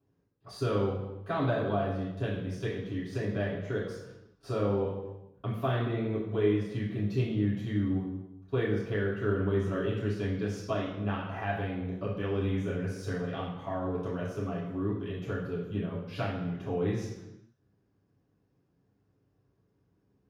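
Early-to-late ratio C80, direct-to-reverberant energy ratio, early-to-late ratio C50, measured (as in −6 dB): 6.0 dB, −9.5 dB, 3.5 dB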